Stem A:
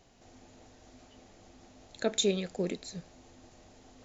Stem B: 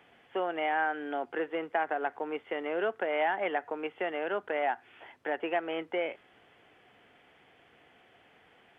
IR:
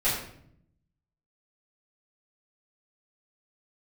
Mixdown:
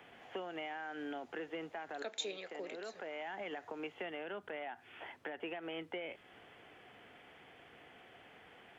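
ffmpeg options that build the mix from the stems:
-filter_complex "[0:a]highpass=f=280:w=0.5412,highpass=f=280:w=1.3066,acrossover=split=540 2500:gain=0.141 1 0.112[s0][s1][s2];[s0][s1][s2]amix=inputs=3:normalize=0,dynaudnorm=f=110:g=3:m=2.24,volume=0.75,asplit=2[s3][s4];[1:a]alimiter=level_in=1.41:limit=0.0631:level=0:latency=1:release=75,volume=0.708,volume=1.33[s5];[s4]apad=whole_len=387211[s6];[s5][s6]sidechaincompress=threshold=0.00708:ratio=8:attack=16:release=746[s7];[s3][s7]amix=inputs=2:normalize=0,acrossover=split=210|3000[s8][s9][s10];[s9]acompressor=threshold=0.00631:ratio=4[s11];[s8][s11][s10]amix=inputs=3:normalize=0"

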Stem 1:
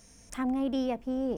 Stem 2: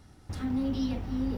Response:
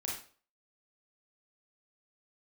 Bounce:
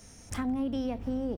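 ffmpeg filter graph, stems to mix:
-filter_complex "[0:a]volume=1.41[s0];[1:a]alimiter=level_in=2:limit=0.0631:level=0:latency=1:release=38,volume=0.501,adelay=17,volume=0.75[s1];[s0][s1]amix=inputs=2:normalize=0,acrossover=split=190[s2][s3];[s3]acompressor=threshold=0.0251:ratio=6[s4];[s2][s4]amix=inputs=2:normalize=0"

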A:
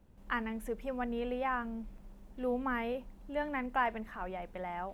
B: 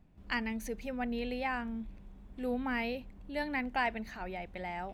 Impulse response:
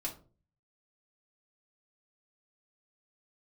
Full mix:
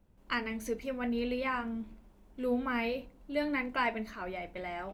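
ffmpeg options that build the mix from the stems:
-filter_complex "[0:a]volume=0.631[s0];[1:a]agate=range=0.355:threshold=0.00562:ratio=16:detection=peak,dynaudnorm=f=140:g=3:m=2.99,flanger=delay=8.9:depth=5.7:regen=-51:speed=0.52:shape=triangular,volume=-1,adelay=0.6,volume=0.398,asplit=2[s1][s2];[s2]volume=0.562[s3];[2:a]atrim=start_sample=2205[s4];[s3][s4]afir=irnorm=-1:irlink=0[s5];[s0][s1][s5]amix=inputs=3:normalize=0"

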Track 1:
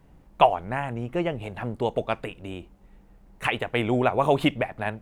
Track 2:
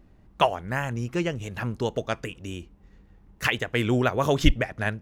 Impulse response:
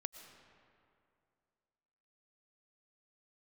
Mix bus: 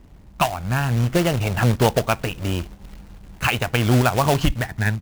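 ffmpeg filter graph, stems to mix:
-filter_complex "[0:a]dynaudnorm=f=110:g=11:m=5.01,lowpass=5800,acrusher=bits=2:mode=log:mix=0:aa=0.000001,volume=1.12[s0];[1:a]equalizer=f=79:w=0.34:g=9.5,adelay=0.6,volume=1[s1];[s0][s1]amix=inputs=2:normalize=0,alimiter=limit=0.501:level=0:latency=1:release=266"

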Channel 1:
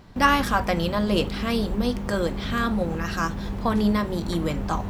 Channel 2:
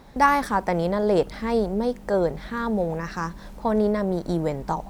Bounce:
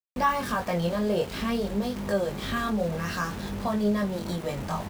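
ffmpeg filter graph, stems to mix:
-filter_complex "[0:a]deesser=0.65,highpass=f=110:p=1,volume=1.26[s0];[1:a]acontrast=80,adelay=1.7,volume=0.282,asplit=2[s1][s2];[s2]apad=whole_len=215983[s3];[s0][s3]sidechaincompress=threshold=0.0316:ratio=8:attack=16:release=161[s4];[s4][s1]amix=inputs=2:normalize=0,flanger=delay=19.5:depth=4:speed=0.52,aeval=exprs='val(0)*gte(abs(val(0)),0.0133)':c=same"

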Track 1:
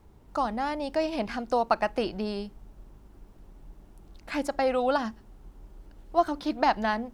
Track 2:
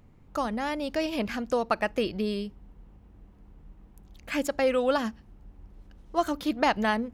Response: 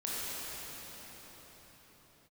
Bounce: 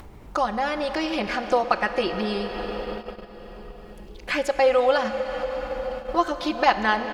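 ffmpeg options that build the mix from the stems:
-filter_complex "[0:a]volume=0.944,asplit=2[s0][s1];[s1]volume=0.168[s2];[1:a]acrossover=split=360 6200:gain=0.0794 1 0.0708[s3][s4][s5];[s3][s4][s5]amix=inputs=3:normalize=0,adelay=4,volume=1.33,asplit=2[s6][s7];[s7]volume=0.266[s8];[2:a]atrim=start_sample=2205[s9];[s2][s8]amix=inputs=2:normalize=0[s10];[s10][s9]afir=irnorm=-1:irlink=0[s11];[s0][s6][s11]amix=inputs=3:normalize=0,agate=range=0.112:threshold=0.0141:ratio=16:detection=peak,acompressor=mode=upward:threshold=0.0891:ratio=2.5"

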